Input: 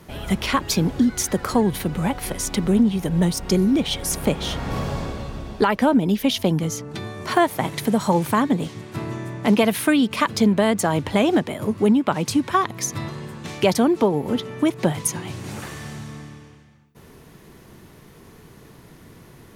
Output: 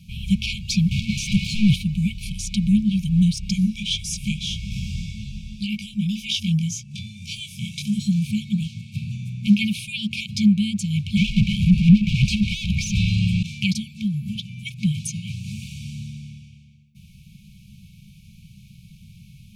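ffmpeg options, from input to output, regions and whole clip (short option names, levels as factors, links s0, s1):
-filter_complex "[0:a]asettb=1/sr,asplit=3[s0][s1][s2];[s0]atrim=end=0.914[s3];[s1]atrim=start=0.91:end=1.76,asetpts=PTS-STARTPTS,afade=t=in:d=0.004:c=qsin,afade=t=out:st=0.846:d=0.004:c=qsin,highshelf=f=12000:g=11.5,asplit=2[s4][s5];[s5]highpass=f=720:p=1,volume=70.8,asoftclip=type=tanh:threshold=0.501[s6];[s4][s6]amix=inputs=2:normalize=0,lowpass=f=1200:p=1,volume=0.501[s7];[s2]atrim=start=1.756[s8];[s3][s7]acrossfade=d=0.004:c1=hsin:c2=qsin[s9];[s9][s8]acrossfade=d=0.004:c1=qsin:c2=hsin,asettb=1/sr,asplit=3[s10][s11][s12];[s10]atrim=end=3.524[s13];[s11]atrim=start=3.52:end=7.99,asetpts=PTS-STARTPTS,afade=t=in:d=0.004:c=qsin,afade=t=out:st=4.466:d=0.004:c=qsin,flanger=delay=19:depth=5.7:speed=1.8,equalizer=f=6500:t=o:w=2.1:g=7,bandreject=f=4300:w=9.5[s14];[s12]atrim=start=7.986[s15];[s13][s14]acrossfade=d=0.004:c1=hsin:c2=qsin[s16];[s16][s15]acrossfade=d=0.004:c1=qsin:c2=hsin,asettb=1/sr,asplit=3[s17][s18][s19];[s17]atrim=end=11.174[s20];[s18]atrim=start=11.17:end=13.43,asetpts=PTS-STARTPTS,afade=t=in:d=0.004:c=qsin,afade=t=out:st=2.256:d=0.004:c=qsin,asplit=2[s21][s22];[s22]highpass=f=720:p=1,volume=63.1,asoftclip=type=tanh:threshold=0.531[s23];[s21][s23]amix=inputs=2:normalize=0,lowpass=f=1000:p=1,volume=0.501,afreqshift=-41[s24];[s19]atrim=start=13.426[s25];[s20][s24]acrossfade=d=0.004:c1=hsin:c2=qsin[s26];[s26][s25]acrossfade=d=0.004:c1=qsin:c2=hsin,acrossover=split=9600[s27][s28];[s28]acompressor=threshold=0.00398:ratio=4:attack=1:release=60[s29];[s27][s29]amix=inputs=2:normalize=0,afftfilt=real='re*(1-between(b*sr/4096,220,2200))':imag='im*(1-between(b*sr/4096,220,2200))':win_size=4096:overlap=0.75,highshelf=f=6400:g=-11.5,volume=1.41"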